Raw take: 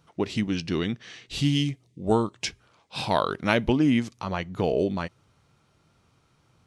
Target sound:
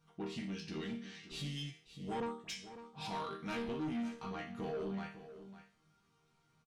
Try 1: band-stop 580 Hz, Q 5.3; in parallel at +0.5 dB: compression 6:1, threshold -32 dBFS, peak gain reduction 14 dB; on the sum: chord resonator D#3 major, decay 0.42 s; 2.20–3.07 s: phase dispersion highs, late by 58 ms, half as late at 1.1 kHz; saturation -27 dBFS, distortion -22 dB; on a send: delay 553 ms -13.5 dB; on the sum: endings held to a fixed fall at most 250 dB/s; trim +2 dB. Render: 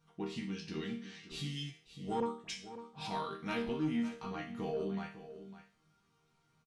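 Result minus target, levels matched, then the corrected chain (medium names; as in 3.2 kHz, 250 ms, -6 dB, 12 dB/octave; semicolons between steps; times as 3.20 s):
saturation: distortion -11 dB
band-stop 580 Hz, Q 5.3; in parallel at +0.5 dB: compression 6:1, threshold -32 dBFS, peak gain reduction 14 dB; on the sum: chord resonator D#3 major, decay 0.42 s; 2.20–3.07 s: phase dispersion highs, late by 58 ms, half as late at 1.1 kHz; saturation -36.5 dBFS, distortion -10 dB; on a send: delay 553 ms -13.5 dB; on the sum: endings held to a fixed fall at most 250 dB/s; trim +2 dB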